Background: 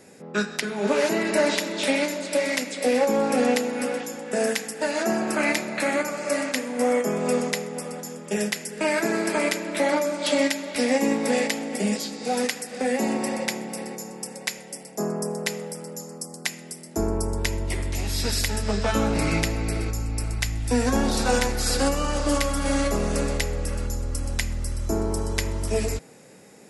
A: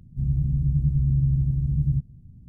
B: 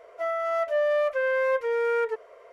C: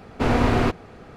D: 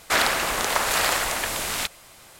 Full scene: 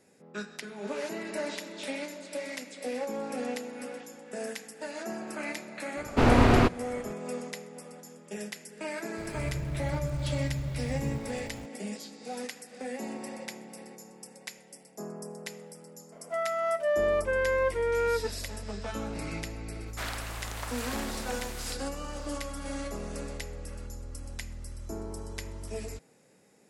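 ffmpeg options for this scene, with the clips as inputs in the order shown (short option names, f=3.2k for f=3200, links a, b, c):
-filter_complex "[0:a]volume=-13dB[a];[1:a]aeval=exprs='val(0)+0.5*0.0422*sgn(val(0))':c=same[b];[3:a]atrim=end=1.16,asetpts=PTS-STARTPTS,volume=-0.5dB,afade=t=in:d=0.004:c=hsin,afade=t=out:st=1.156:d=0.004:c=hsin,adelay=5970[c];[b]atrim=end=2.48,asetpts=PTS-STARTPTS,volume=-12.5dB,afade=t=in:d=0.004:c=hsin,afade=t=out:st=2.476:d=0.004:c=hsin,adelay=9180[d];[2:a]atrim=end=2.52,asetpts=PTS-STARTPTS,volume=-2.5dB,afade=t=in:d=0.004:c=hsin,afade=t=out:st=2.516:d=0.004:c=hsin,adelay=16120[e];[4:a]atrim=end=2.39,asetpts=PTS-STARTPTS,volume=-16.5dB,afade=t=in:d=0.004:c=hsin,afade=t=out:st=2.386:d=0.004:c=hsin,adelay=19870[f];[a][c][d][e][f]amix=inputs=5:normalize=0"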